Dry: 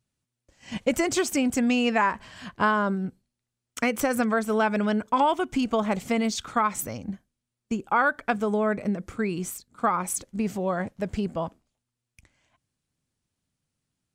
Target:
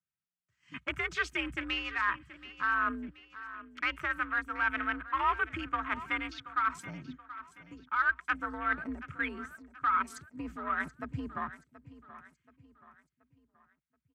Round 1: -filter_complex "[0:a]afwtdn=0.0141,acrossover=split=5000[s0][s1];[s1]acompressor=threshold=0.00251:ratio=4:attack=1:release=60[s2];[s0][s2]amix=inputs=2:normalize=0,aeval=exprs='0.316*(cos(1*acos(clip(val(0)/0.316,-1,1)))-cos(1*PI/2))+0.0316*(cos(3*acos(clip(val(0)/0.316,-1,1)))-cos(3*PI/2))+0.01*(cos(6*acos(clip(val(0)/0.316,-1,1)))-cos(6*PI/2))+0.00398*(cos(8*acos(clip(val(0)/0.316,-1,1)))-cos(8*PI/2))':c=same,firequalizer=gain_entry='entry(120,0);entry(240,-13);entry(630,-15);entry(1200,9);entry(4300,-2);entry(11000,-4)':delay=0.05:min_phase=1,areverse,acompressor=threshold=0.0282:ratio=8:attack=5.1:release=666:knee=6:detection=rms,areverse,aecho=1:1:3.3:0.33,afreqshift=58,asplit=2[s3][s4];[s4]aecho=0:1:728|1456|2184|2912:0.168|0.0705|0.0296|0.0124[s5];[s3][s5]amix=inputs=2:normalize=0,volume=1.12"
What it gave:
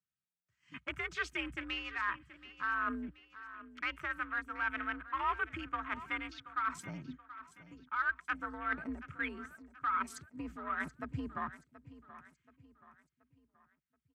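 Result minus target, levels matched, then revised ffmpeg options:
compression: peak gain reduction +5 dB
-filter_complex "[0:a]afwtdn=0.0141,acrossover=split=5000[s0][s1];[s1]acompressor=threshold=0.00251:ratio=4:attack=1:release=60[s2];[s0][s2]amix=inputs=2:normalize=0,aeval=exprs='0.316*(cos(1*acos(clip(val(0)/0.316,-1,1)))-cos(1*PI/2))+0.0316*(cos(3*acos(clip(val(0)/0.316,-1,1)))-cos(3*PI/2))+0.01*(cos(6*acos(clip(val(0)/0.316,-1,1)))-cos(6*PI/2))+0.00398*(cos(8*acos(clip(val(0)/0.316,-1,1)))-cos(8*PI/2))':c=same,firequalizer=gain_entry='entry(120,0);entry(240,-13);entry(630,-15);entry(1200,9);entry(4300,-2);entry(11000,-4)':delay=0.05:min_phase=1,areverse,acompressor=threshold=0.0562:ratio=8:attack=5.1:release=666:knee=6:detection=rms,areverse,aecho=1:1:3.3:0.33,afreqshift=58,asplit=2[s3][s4];[s4]aecho=0:1:728|1456|2184|2912:0.168|0.0705|0.0296|0.0124[s5];[s3][s5]amix=inputs=2:normalize=0,volume=1.12"

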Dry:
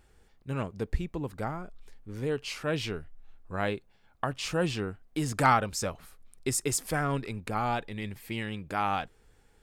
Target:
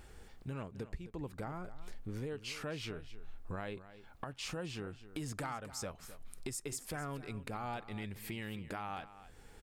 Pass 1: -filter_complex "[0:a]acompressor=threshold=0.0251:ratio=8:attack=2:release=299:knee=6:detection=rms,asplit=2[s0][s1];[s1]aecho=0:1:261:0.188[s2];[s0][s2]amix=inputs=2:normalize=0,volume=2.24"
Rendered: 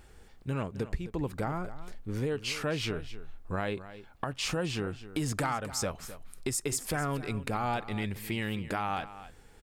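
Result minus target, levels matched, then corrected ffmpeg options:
compression: peak gain reduction -9.5 dB
-filter_complex "[0:a]acompressor=threshold=0.00708:ratio=8:attack=2:release=299:knee=6:detection=rms,asplit=2[s0][s1];[s1]aecho=0:1:261:0.188[s2];[s0][s2]amix=inputs=2:normalize=0,volume=2.24"

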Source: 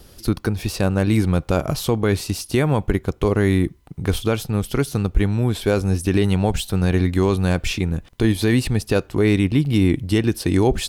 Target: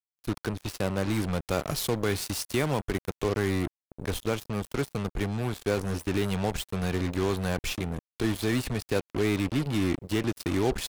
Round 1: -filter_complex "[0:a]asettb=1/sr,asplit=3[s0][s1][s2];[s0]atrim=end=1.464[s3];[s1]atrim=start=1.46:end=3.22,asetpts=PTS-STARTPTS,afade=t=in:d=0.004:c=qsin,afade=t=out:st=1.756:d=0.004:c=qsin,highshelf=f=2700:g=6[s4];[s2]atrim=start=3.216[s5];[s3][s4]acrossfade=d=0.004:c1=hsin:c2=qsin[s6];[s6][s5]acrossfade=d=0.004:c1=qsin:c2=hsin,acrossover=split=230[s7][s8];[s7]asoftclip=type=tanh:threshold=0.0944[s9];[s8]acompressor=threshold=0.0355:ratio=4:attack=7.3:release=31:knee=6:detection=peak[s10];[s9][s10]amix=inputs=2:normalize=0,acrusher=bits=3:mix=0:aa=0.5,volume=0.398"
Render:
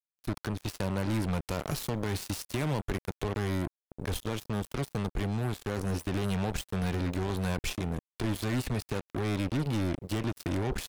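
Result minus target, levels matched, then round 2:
compression: peak gain reduction +11.5 dB
-filter_complex "[0:a]asettb=1/sr,asplit=3[s0][s1][s2];[s0]atrim=end=1.464[s3];[s1]atrim=start=1.46:end=3.22,asetpts=PTS-STARTPTS,afade=t=in:d=0.004:c=qsin,afade=t=out:st=1.756:d=0.004:c=qsin,highshelf=f=2700:g=6[s4];[s2]atrim=start=3.216[s5];[s3][s4]acrossfade=d=0.004:c1=hsin:c2=qsin[s6];[s6][s5]acrossfade=d=0.004:c1=qsin:c2=hsin,acrossover=split=230[s7][s8];[s7]asoftclip=type=tanh:threshold=0.0944[s9];[s9][s8]amix=inputs=2:normalize=0,acrusher=bits=3:mix=0:aa=0.5,volume=0.398"

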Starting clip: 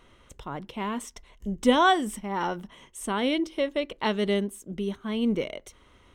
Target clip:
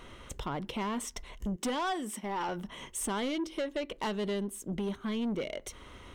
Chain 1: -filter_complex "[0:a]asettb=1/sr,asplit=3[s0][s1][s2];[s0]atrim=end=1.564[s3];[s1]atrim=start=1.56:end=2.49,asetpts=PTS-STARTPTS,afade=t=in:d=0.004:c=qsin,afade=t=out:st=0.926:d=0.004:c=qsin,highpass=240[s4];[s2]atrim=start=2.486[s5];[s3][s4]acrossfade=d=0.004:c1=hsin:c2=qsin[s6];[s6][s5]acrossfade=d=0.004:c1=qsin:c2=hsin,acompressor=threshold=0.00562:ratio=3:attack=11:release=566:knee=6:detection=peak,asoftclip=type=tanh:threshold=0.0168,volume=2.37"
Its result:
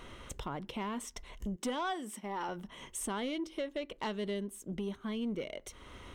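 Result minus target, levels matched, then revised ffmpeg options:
compression: peak gain reduction +5.5 dB
-filter_complex "[0:a]asettb=1/sr,asplit=3[s0][s1][s2];[s0]atrim=end=1.564[s3];[s1]atrim=start=1.56:end=2.49,asetpts=PTS-STARTPTS,afade=t=in:d=0.004:c=qsin,afade=t=out:st=0.926:d=0.004:c=qsin,highpass=240[s4];[s2]atrim=start=2.486[s5];[s3][s4]acrossfade=d=0.004:c1=hsin:c2=qsin[s6];[s6][s5]acrossfade=d=0.004:c1=qsin:c2=hsin,acompressor=threshold=0.015:ratio=3:attack=11:release=566:knee=6:detection=peak,asoftclip=type=tanh:threshold=0.0168,volume=2.37"

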